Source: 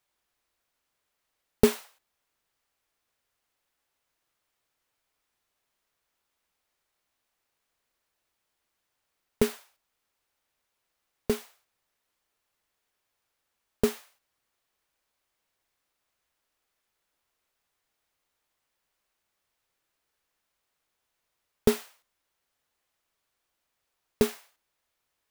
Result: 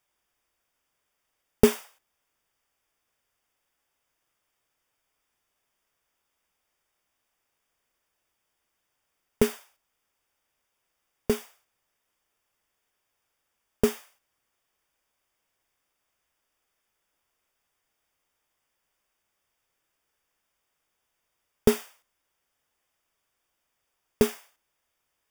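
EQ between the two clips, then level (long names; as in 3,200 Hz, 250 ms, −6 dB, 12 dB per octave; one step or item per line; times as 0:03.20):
Butterworth band-reject 4,100 Hz, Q 6
+2.0 dB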